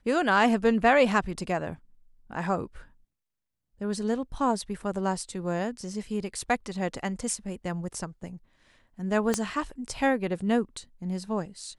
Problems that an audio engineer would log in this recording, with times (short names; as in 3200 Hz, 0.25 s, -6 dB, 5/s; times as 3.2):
9.34 pop -11 dBFS